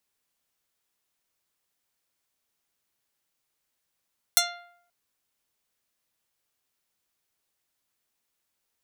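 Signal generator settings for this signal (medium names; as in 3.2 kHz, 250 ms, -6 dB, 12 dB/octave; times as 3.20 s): plucked string F5, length 0.53 s, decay 0.69 s, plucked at 0.29, medium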